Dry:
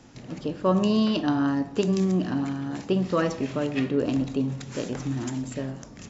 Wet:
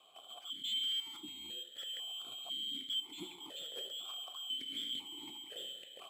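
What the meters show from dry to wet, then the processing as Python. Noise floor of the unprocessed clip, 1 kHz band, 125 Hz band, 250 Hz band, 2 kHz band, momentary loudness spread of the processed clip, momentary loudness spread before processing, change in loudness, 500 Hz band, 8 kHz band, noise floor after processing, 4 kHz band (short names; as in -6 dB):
-45 dBFS, -24.5 dB, under -40 dB, -33.0 dB, -19.0 dB, 10 LU, 10 LU, -13.5 dB, -30.0 dB, n/a, -57 dBFS, +4.0 dB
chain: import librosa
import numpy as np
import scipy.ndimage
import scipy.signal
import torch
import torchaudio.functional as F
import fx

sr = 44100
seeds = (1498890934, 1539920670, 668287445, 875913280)

p1 = fx.band_shuffle(x, sr, order='2413')
p2 = fx.high_shelf(p1, sr, hz=2300.0, db=-7.5)
p3 = fx.rider(p2, sr, range_db=4, speed_s=2.0)
p4 = 10.0 ** (-30.5 / 20.0) * np.tanh(p3 / 10.0 ** (-30.5 / 20.0))
p5 = p4 + fx.echo_single(p4, sr, ms=808, db=-18.5, dry=0)
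p6 = (np.kron(scipy.signal.resample_poly(p5, 1, 4), np.eye(4)[0]) * 4)[:len(p5)]
p7 = fx.vowel_held(p6, sr, hz=2.0)
y = p7 * 10.0 ** (6.0 / 20.0)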